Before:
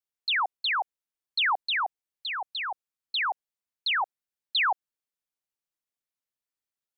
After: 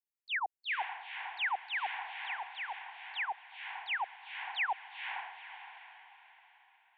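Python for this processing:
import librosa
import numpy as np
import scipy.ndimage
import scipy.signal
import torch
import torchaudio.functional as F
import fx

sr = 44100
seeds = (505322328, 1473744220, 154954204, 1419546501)

y = fx.fixed_phaser(x, sr, hz=840.0, stages=8)
y = fx.echo_diffused(y, sr, ms=482, feedback_pct=42, wet_db=-6.0)
y = F.gain(torch.from_numpy(y), -6.0).numpy()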